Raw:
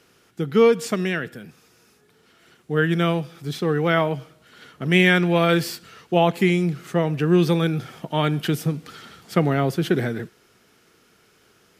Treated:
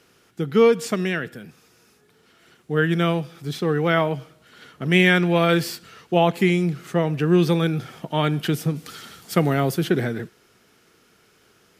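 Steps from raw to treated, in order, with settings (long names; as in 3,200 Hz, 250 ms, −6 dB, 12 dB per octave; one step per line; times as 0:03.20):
0:08.75–0:09.83: high-shelf EQ 4,400 Hz → 7,900 Hz +11 dB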